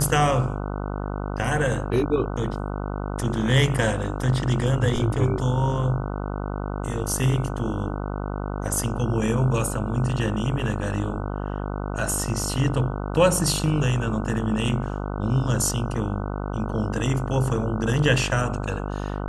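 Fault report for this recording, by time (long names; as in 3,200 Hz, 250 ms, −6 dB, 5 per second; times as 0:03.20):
mains buzz 50 Hz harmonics 30 −29 dBFS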